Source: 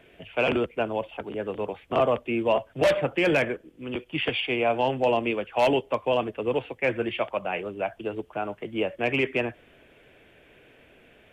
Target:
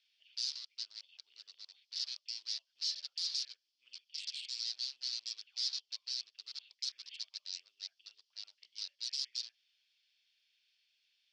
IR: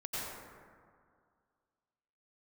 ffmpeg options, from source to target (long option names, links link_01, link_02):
-af "aeval=exprs='0.0501*(abs(mod(val(0)/0.0501+3,4)-2)-1)':channel_layout=same,asuperpass=centerf=4800:order=4:qfactor=3.5,volume=5.5dB"